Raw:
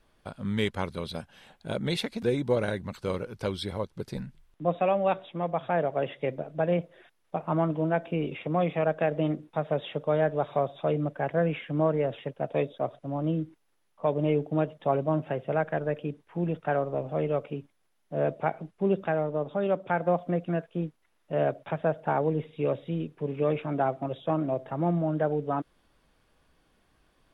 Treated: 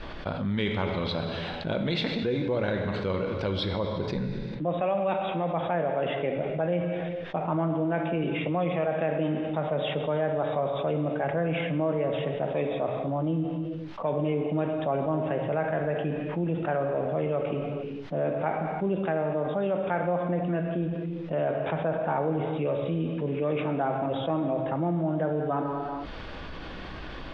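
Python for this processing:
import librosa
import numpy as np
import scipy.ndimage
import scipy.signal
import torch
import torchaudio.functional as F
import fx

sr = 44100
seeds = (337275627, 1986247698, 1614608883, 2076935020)

y = scipy.signal.sosfilt(scipy.signal.butter(4, 4400.0, 'lowpass', fs=sr, output='sos'), x)
y = fx.rev_gated(y, sr, seeds[0], gate_ms=470, shape='falling', drr_db=6.0)
y = fx.env_flatten(y, sr, amount_pct=70)
y = y * librosa.db_to_amplitude(-5.0)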